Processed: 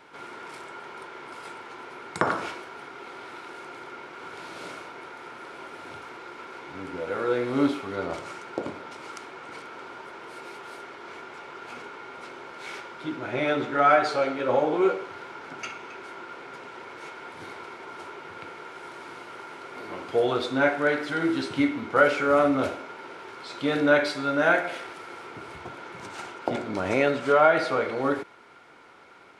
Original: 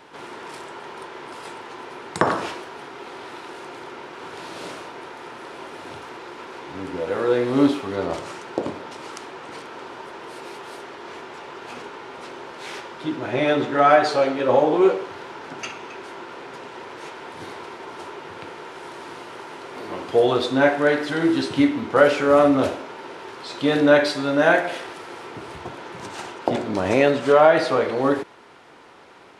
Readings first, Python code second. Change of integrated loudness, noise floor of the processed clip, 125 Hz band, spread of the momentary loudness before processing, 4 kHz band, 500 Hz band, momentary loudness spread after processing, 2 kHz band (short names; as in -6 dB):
-5.0 dB, -44 dBFS, -6.0 dB, 20 LU, -6.0 dB, -6.0 dB, 19 LU, -2.5 dB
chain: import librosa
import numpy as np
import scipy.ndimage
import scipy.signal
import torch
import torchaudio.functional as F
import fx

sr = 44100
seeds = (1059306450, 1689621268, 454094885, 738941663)

y = fx.small_body(x, sr, hz=(1400.0, 2200.0), ring_ms=25, db=10)
y = F.gain(torch.from_numpy(y), -6.0).numpy()